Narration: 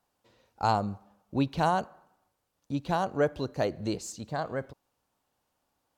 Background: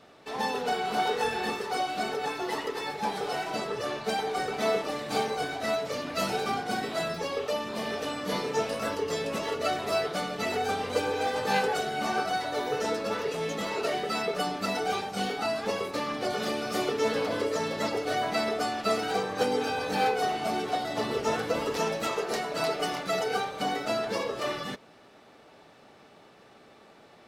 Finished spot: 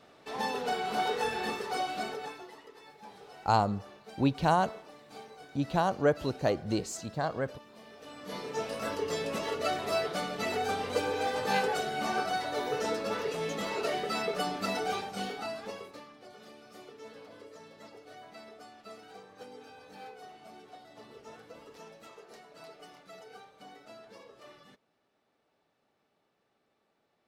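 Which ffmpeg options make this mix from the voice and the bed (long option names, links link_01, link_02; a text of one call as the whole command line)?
ffmpeg -i stem1.wav -i stem2.wav -filter_complex "[0:a]adelay=2850,volume=0.5dB[link_01];[1:a]volume=14dB,afade=type=out:start_time=1.9:duration=0.62:silence=0.149624,afade=type=in:start_time=7.96:duration=1.08:silence=0.141254,afade=type=out:start_time=14.76:duration=1.35:silence=0.112202[link_02];[link_01][link_02]amix=inputs=2:normalize=0" out.wav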